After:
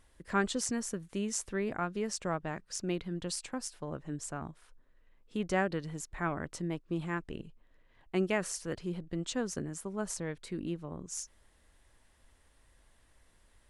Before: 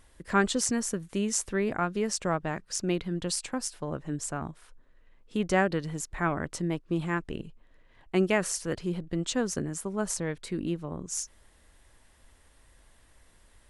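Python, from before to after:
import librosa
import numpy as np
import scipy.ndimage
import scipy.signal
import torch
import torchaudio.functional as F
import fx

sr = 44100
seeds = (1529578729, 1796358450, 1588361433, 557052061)

y = fx.high_shelf(x, sr, hz=10000.0, db=-3.0)
y = y * 10.0 ** (-5.5 / 20.0)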